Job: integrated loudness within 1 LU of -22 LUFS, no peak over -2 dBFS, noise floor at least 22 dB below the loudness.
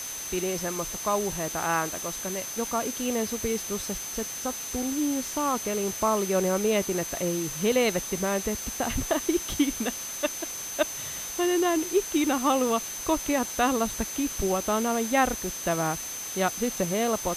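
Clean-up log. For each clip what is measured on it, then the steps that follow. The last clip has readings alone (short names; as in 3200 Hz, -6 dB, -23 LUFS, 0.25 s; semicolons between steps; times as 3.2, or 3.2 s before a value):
steady tone 6200 Hz; tone level -35 dBFS; noise floor -36 dBFS; noise floor target -49 dBFS; loudness -27.0 LUFS; peak -9.5 dBFS; loudness target -22.0 LUFS
-> notch 6200 Hz, Q 30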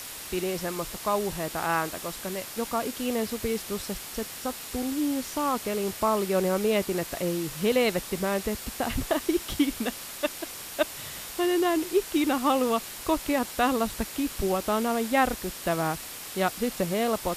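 steady tone none; noise floor -40 dBFS; noise floor target -50 dBFS
-> noise print and reduce 10 dB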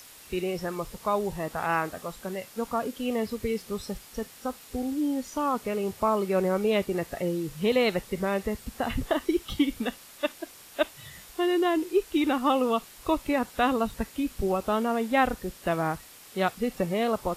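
noise floor -50 dBFS; noise floor target -51 dBFS
-> noise print and reduce 6 dB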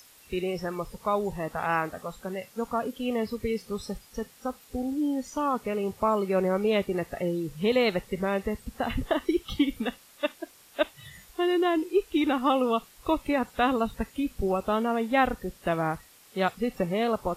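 noise floor -55 dBFS; loudness -28.5 LUFS; peak -10.0 dBFS; loudness target -22.0 LUFS
-> gain +6.5 dB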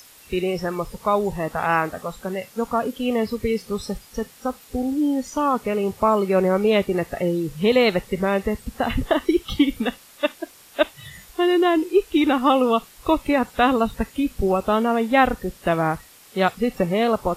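loudness -22.0 LUFS; peak -3.5 dBFS; noise floor -49 dBFS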